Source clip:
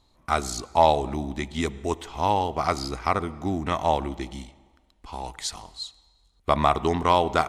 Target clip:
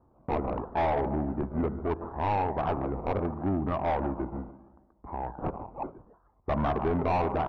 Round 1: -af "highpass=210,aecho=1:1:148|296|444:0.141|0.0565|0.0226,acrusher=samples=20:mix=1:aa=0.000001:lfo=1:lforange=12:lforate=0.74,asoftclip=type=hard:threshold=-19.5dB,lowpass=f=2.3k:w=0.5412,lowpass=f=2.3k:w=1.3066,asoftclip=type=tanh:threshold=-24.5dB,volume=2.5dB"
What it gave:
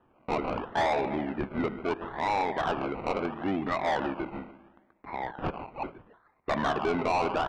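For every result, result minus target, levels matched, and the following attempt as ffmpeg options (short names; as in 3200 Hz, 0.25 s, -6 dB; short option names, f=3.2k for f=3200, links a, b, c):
2000 Hz band +7.5 dB; 125 Hz band -7.5 dB
-af "highpass=210,aecho=1:1:148|296|444:0.141|0.0565|0.0226,acrusher=samples=20:mix=1:aa=0.000001:lfo=1:lforange=12:lforate=0.74,asoftclip=type=hard:threshold=-19.5dB,lowpass=f=1.1k:w=0.5412,lowpass=f=1.1k:w=1.3066,asoftclip=type=tanh:threshold=-24.5dB,volume=2.5dB"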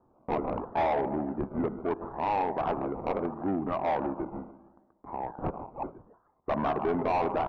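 125 Hz band -6.5 dB
-af "highpass=60,aecho=1:1:148|296|444:0.141|0.0565|0.0226,acrusher=samples=20:mix=1:aa=0.000001:lfo=1:lforange=12:lforate=0.74,asoftclip=type=hard:threshold=-19.5dB,lowpass=f=1.1k:w=0.5412,lowpass=f=1.1k:w=1.3066,asoftclip=type=tanh:threshold=-24.5dB,volume=2.5dB"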